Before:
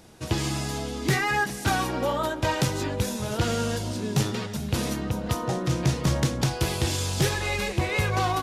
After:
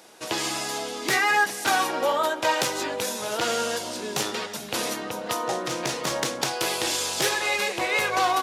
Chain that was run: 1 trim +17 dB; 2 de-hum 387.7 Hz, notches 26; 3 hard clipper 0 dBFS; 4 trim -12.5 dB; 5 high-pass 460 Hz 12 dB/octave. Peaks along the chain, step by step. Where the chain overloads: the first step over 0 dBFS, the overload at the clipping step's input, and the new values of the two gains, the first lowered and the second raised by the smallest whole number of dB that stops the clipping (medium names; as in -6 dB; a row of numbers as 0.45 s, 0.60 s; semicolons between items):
+1.5 dBFS, +3.5 dBFS, 0.0 dBFS, -12.5 dBFS, -8.5 dBFS; step 1, 3.5 dB; step 1 +13 dB, step 4 -8.5 dB